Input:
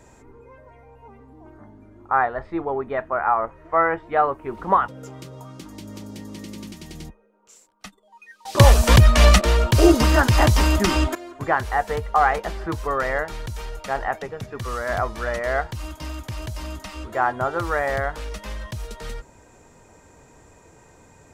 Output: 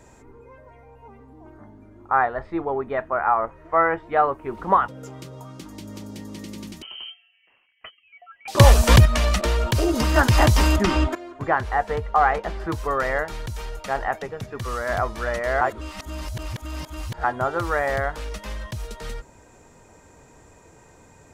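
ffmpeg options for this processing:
-filter_complex "[0:a]asettb=1/sr,asplit=3[a][b][c];[a]atrim=end=6.824[d];[b]atrim=start=6.82:end=8.48,asetpts=PTS-STARTPTS,afade=t=in:d=0.004:c=qsin,afade=t=out:st=1.656:d=0.004:c=qsin,lowpass=f=2.7k:t=q:w=0.5098,lowpass=f=2.7k:t=q:w=0.6013,lowpass=f=2.7k:t=q:w=0.9,lowpass=f=2.7k:t=q:w=2.563,afreqshift=-3200[e];[c]atrim=start=8.476[f];[d][e]acrossfade=d=0.004:c1=hsin:c2=qsin[g];[g][f]acrossfade=d=0.004:c1=qsin:c2=hsin,asettb=1/sr,asplit=3[h][i][j];[h]atrim=end=9.054[k];[i]atrim=start=9.05:end=10.16,asetpts=PTS-STARTPTS,afade=t=in:d=0.004:c=qsin,afade=t=out:st=1.106:d=0.004:c=qsin,acompressor=threshold=-17dB:ratio=5:attack=3.2:release=140:knee=1:detection=peak[l];[j]atrim=start=10.156[m];[k][l]acrossfade=d=0.004:c1=hsin:c2=qsin[n];[n][m]acrossfade=d=0.004:c1=qsin:c2=hsin,asettb=1/sr,asplit=3[o][p][q];[o]atrim=end=10.764[r];[p]atrim=start=10.76:end=12.6,asetpts=PTS-STARTPTS,afade=t=in:d=0.004:c=qsin,afade=t=out:st=1.836:d=0.004:c=qsin,aemphasis=mode=reproduction:type=50kf[s];[q]atrim=start=12.596[t];[r][s]acrossfade=d=0.004:c1=hsin:c2=qsin[u];[u][t]acrossfade=d=0.004:c1=qsin:c2=hsin,asplit=3[v][w][x];[v]atrim=end=15.612[y];[w]atrim=start=15.608:end=17.242,asetpts=PTS-STARTPTS,areverse[z];[x]atrim=start=17.238[aa];[y][z]acrossfade=d=0.004:c1=hsin:c2=hsin[ab];[ab][aa]acrossfade=d=0.004:c1=hsin:c2=hsin"

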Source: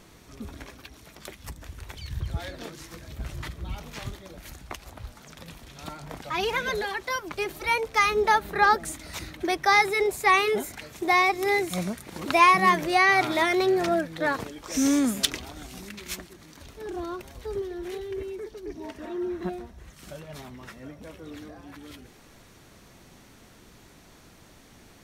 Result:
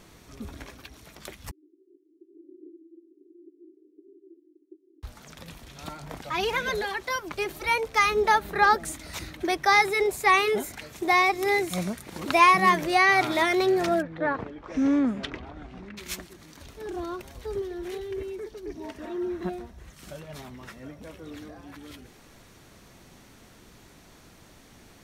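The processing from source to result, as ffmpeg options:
-filter_complex "[0:a]asettb=1/sr,asplit=3[a][b][c];[a]atrim=end=1.514[d];[b]atrim=start=1.51:end=5.03,asetpts=PTS-STARTPTS,afade=t=in:d=0.004:c=qsin,afade=t=out:st=3.516:d=0.004:c=qsin,asuperpass=centerf=340:order=8:qfactor=3.4[e];[c]atrim=start=5.026[f];[d][e]acrossfade=d=0.004:c1=hsin:c2=qsin[g];[g][f]acrossfade=d=0.004:c1=qsin:c2=hsin,asettb=1/sr,asplit=3[h][i][j];[h]atrim=end=14.024[k];[i]atrim=start=14.02:end=15.97,asetpts=PTS-STARTPTS,afade=t=in:d=0.004:c=qsin,afade=t=out:st=1.946:d=0.004:c=qsin,lowpass=1.8k[l];[j]atrim=start=15.966[m];[k][l]acrossfade=d=0.004:c1=hsin:c2=qsin[n];[n][m]acrossfade=d=0.004:c1=qsin:c2=hsin"

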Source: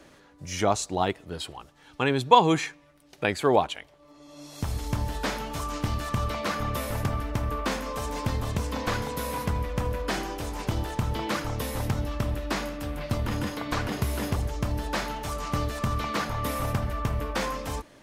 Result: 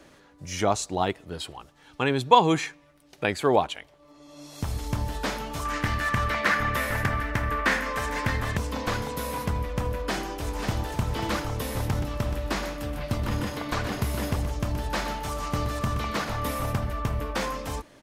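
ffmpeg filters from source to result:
-filter_complex "[0:a]asettb=1/sr,asplit=3[a][b][c];[a]atrim=end=5.654[d];[b]atrim=start=5.65:end=8.57,asetpts=PTS-STARTPTS,afade=t=in:d=0.004:c=qsin,afade=t=out:st=2.916:d=0.004:c=qsin,equalizer=f=1.8k:t=o:w=0.84:g=14.5[e];[c]atrim=start=8.566[f];[d][e]acrossfade=d=0.004:c1=hsin:c2=qsin[g];[g][f]acrossfade=d=0.004:c1=qsin:c2=hsin,asplit=2[h][i];[i]afade=t=in:st=9.88:d=0.01,afade=t=out:st=10.91:d=0.01,aecho=0:1:540|1080|1620|2160|2700|3240|3780:0.501187|0.275653|0.151609|0.083385|0.0458618|0.025224|0.0138732[j];[h][j]amix=inputs=2:normalize=0,asettb=1/sr,asplit=3[k][l][m];[k]atrim=end=11.804[n];[l]atrim=start=11.8:end=16.52,asetpts=PTS-STARTPTS,afade=t=in:d=0.004:c=qsin,afade=t=out:st=4.716:d=0.004:c=qsin,aecho=1:1:124:0.355,atrim=end_sample=208152[o];[m]atrim=start=16.516[p];[n][o]acrossfade=d=0.004:c1=hsin:c2=qsin[q];[q][p]acrossfade=d=0.004:c1=qsin:c2=hsin"

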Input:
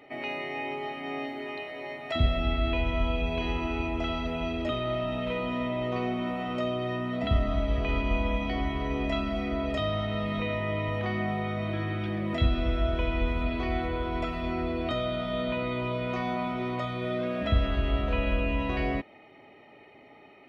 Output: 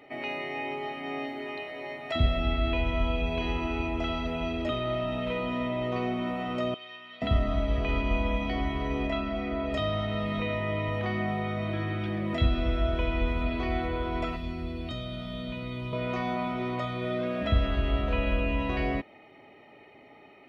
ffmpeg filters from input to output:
-filter_complex "[0:a]asettb=1/sr,asplit=3[a][b][c];[a]atrim=end=6.744[d];[b]atrim=start=6.74:end=7.22,asetpts=PTS-STARTPTS,afade=t=in:d=0.004:c=qsin,afade=t=out:st=0.476:d=0.004:c=qsin,bandpass=f=3.2k:t=q:w=1.6[e];[c]atrim=start=7.216[f];[d][e]acrossfade=d=0.004:c1=hsin:c2=qsin[g];[g][f]acrossfade=d=0.004:c1=qsin:c2=hsin,asettb=1/sr,asplit=3[h][i][j];[h]atrim=end=9.074[k];[i]atrim=start=9.07:end=9.72,asetpts=PTS-STARTPTS,afade=t=in:d=0.004:c=qsin,afade=t=out:st=0.646:d=0.004:c=qsin,bass=f=250:g=-3,treble=f=4k:g=-8[l];[j]atrim=start=9.716[m];[k][l]acrossfade=d=0.004:c1=hsin:c2=qsin[n];[n][m]acrossfade=d=0.004:c1=qsin:c2=hsin,asettb=1/sr,asplit=3[o][p][q];[o]atrim=end=14.364[r];[p]atrim=start=14.36:end=15.93,asetpts=PTS-STARTPTS,afade=t=in:d=0.004:c=qsin,afade=t=out:st=1.566:d=0.004:c=qsin,acrossover=split=240|3000[s][t][u];[t]acompressor=threshold=-50dB:ratio=2:attack=3.2:release=140:knee=2.83:detection=peak[v];[s][v][u]amix=inputs=3:normalize=0[w];[q]atrim=start=15.926[x];[r][w]acrossfade=d=0.004:c1=hsin:c2=qsin[y];[y][x]acrossfade=d=0.004:c1=qsin:c2=hsin"

